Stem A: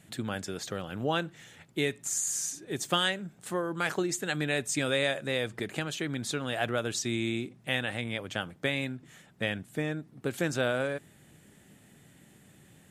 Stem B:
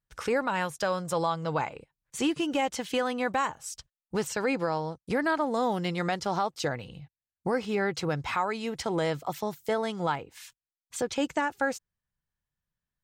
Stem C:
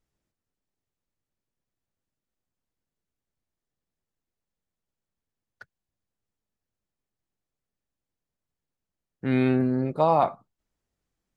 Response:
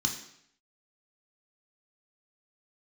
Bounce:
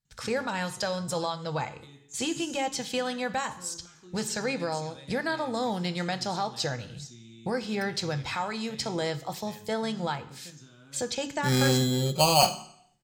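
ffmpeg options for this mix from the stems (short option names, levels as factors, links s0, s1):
-filter_complex "[0:a]equalizer=f=150:t=o:w=0.77:g=6,bandreject=f=107.7:t=h:w=4,bandreject=f=215.4:t=h:w=4,bandreject=f=323.1:t=h:w=4,bandreject=f=430.8:t=h:w=4,bandreject=f=538.5:t=h:w=4,bandreject=f=646.2:t=h:w=4,bandreject=f=753.9:t=h:w=4,bandreject=f=861.6:t=h:w=4,bandreject=f=969.3:t=h:w=4,bandreject=f=1077:t=h:w=4,bandreject=f=1184.7:t=h:w=4,bandreject=f=1292.4:t=h:w=4,bandreject=f=1400.1:t=h:w=4,bandreject=f=1507.8:t=h:w=4,bandreject=f=1615.5:t=h:w=4,bandreject=f=1723.2:t=h:w=4,bandreject=f=1830.9:t=h:w=4,bandreject=f=1938.6:t=h:w=4,bandreject=f=2046.3:t=h:w=4,bandreject=f=2154:t=h:w=4,bandreject=f=2261.7:t=h:w=4,bandreject=f=2369.4:t=h:w=4,bandreject=f=2477.1:t=h:w=4,bandreject=f=2584.8:t=h:w=4,bandreject=f=2692.5:t=h:w=4,bandreject=f=2800.2:t=h:w=4,bandreject=f=2907.9:t=h:w=4,bandreject=f=3015.6:t=h:w=4,bandreject=f=3123.3:t=h:w=4,bandreject=f=3231:t=h:w=4,bandreject=f=3338.7:t=h:w=4,bandreject=f=3446.4:t=h:w=4,bandreject=f=3554.1:t=h:w=4,bandreject=f=3661.8:t=h:w=4,bandreject=f=3769.5:t=h:w=4,alimiter=limit=0.106:level=0:latency=1:release=154,adelay=50,volume=0.106,asplit=2[s0][s1];[s1]volume=0.299[s2];[1:a]volume=0.794,asplit=3[s3][s4][s5];[s4]volume=0.211[s6];[2:a]aecho=1:1:5.4:0.59,acrusher=samples=12:mix=1:aa=0.000001,adelay=2200,volume=0.891,asplit=2[s7][s8];[s8]volume=0.2[s9];[s5]apad=whole_len=571350[s10];[s0][s10]sidechaingate=range=0.0224:threshold=0.00282:ratio=16:detection=peak[s11];[3:a]atrim=start_sample=2205[s12];[s2][s6][s9]amix=inputs=3:normalize=0[s13];[s13][s12]afir=irnorm=-1:irlink=0[s14];[s11][s3][s7][s14]amix=inputs=4:normalize=0,equalizer=f=5800:t=o:w=2:g=6.5,bandreject=f=425.2:t=h:w=4,bandreject=f=850.4:t=h:w=4,bandreject=f=1275.6:t=h:w=4,bandreject=f=1700.8:t=h:w=4,bandreject=f=2126:t=h:w=4,bandreject=f=2551.2:t=h:w=4,bandreject=f=2976.4:t=h:w=4,bandreject=f=3401.6:t=h:w=4,bandreject=f=3826.8:t=h:w=4,bandreject=f=4252:t=h:w=4,bandreject=f=4677.2:t=h:w=4,bandreject=f=5102.4:t=h:w=4,bandreject=f=5527.6:t=h:w=4,bandreject=f=5952.8:t=h:w=4,bandreject=f=6378:t=h:w=4,bandreject=f=6803.2:t=h:w=4,bandreject=f=7228.4:t=h:w=4,bandreject=f=7653.6:t=h:w=4,bandreject=f=8078.8:t=h:w=4,bandreject=f=8504:t=h:w=4,bandreject=f=8929.2:t=h:w=4"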